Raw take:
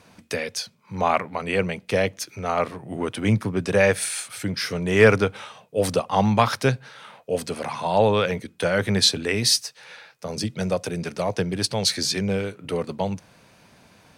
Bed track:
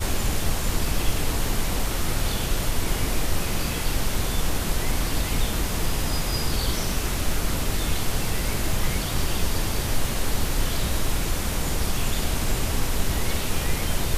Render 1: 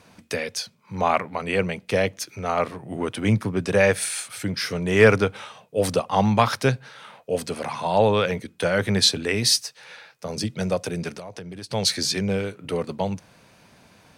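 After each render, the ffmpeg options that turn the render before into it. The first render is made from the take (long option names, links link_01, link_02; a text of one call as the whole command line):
ffmpeg -i in.wav -filter_complex "[0:a]asplit=3[link_01][link_02][link_03];[link_01]afade=type=out:start_time=11.14:duration=0.02[link_04];[link_02]acompressor=threshold=-33dB:ratio=10:attack=3.2:release=140:knee=1:detection=peak,afade=type=in:start_time=11.14:duration=0.02,afade=type=out:start_time=11.7:duration=0.02[link_05];[link_03]afade=type=in:start_time=11.7:duration=0.02[link_06];[link_04][link_05][link_06]amix=inputs=3:normalize=0" out.wav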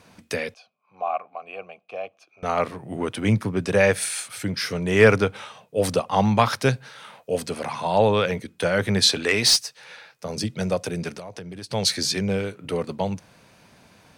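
ffmpeg -i in.wav -filter_complex "[0:a]asettb=1/sr,asplit=3[link_01][link_02][link_03];[link_01]atrim=end=0.544[link_04];[link_02]atrim=start=0.54:end=2.43,asetpts=PTS-STARTPTS,afade=type=in:duration=0.004:curve=qsin,afade=type=out:start_time=1.886:duration=0.004:curve=qsin,asplit=3[link_05][link_06][link_07];[link_05]bandpass=frequency=730:width_type=q:width=8,volume=0dB[link_08];[link_06]bandpass=frequency=1090:width_type=q:width=8,volume=-6dB[link_09];[link_07]bandpass=frequency=2440:width_type=q:width=8,volume=-9dB[link_10];[link_08][link_09][link_10]amix=inputs=3:normalize=0[link_11];[link_03]atrim=start=2.426[link_12];[link_04][link_11]acrossfade=duration=0.004:curve1=hsin:curve2=qsin[link_13];[link_13][link_12]acrossfade=duration=0.004:curve1=qsin:curve2=hsin,asettb=1/sr,asplit=3[link_14][link_15][link_16];[link_14]atrim=end=6.654[link_17];[link_15]atrim=start=6.65:end=7.37,asetpts=PTS-STARTPTS,afade=type=in:duration=0.004:curve=qsin,afade=type=out:start_time=0.716:duration=0.004:curve=qsin,highshelf=frequency=5700:gain=5.5[link_18];[link_16]atrim=start=7.366[link_19];[link_17][link_18]acrossfade=duration=0.004:curve1=hsin:curve2=qsin[link_20];[link_20][link_19]acrossfade=duration=0.004:curve1=qsin:curve2=hsin,asettb=1/sr,asplit=3[link_21][link_22][link_23];[link_21]atrim=end=9.094[link_24];[link_22]atrim=start=9.09:end=9.59,asetpts=PTS-STARTPTS,afade=type=in:duration=0.004:curve=qsin,afade=type=out:start_time=0.496:duration=0.004:curve=qsin,asplit=2[link_25][link_26];[link_26]highpass=frequency=720:poles=1,volume=12dB,asoftclip=type=tanh:threshold=-7dB[link_27];[link_25][link_27]amix=inputs=2:normalize=0,lowpass=frequency=6100:poles=1,volume=-6dB[link_28];[link_23]atrim=start=9.586[link_29];[link_24][link_28]acrossfade=duration=0.004:curve1=hsin:curve2=qsin[link_30];[link_30][link_29]acrossfade=duration=0.004:curve1=qsin:curve2=hsin" out.wav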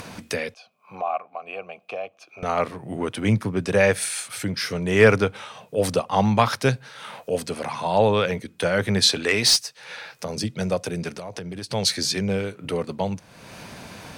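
ffmpeg -i in.wav -af "acompressor=mode=upward:threshold=-27dB:ratio=2.5" out.wav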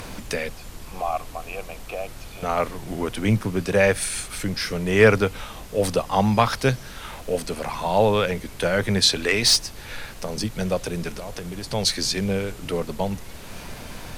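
ffmpeg -i in.wav -i bed.wav -filter_complex "[1:a]volume=-15dB[link_01];[0:a][link_01]amix=inputs=2:normalize=0" out.wav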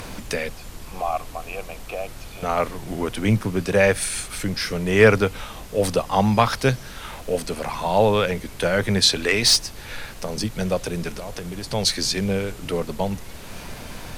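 ffmpeg -i in.wav -af "volume=1dB" out.wav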